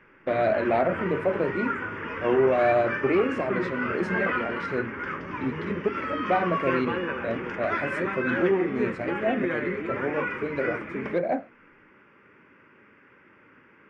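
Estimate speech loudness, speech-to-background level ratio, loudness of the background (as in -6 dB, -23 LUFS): -28.0 LUFS, 3.0 dB, -31.0 LUFS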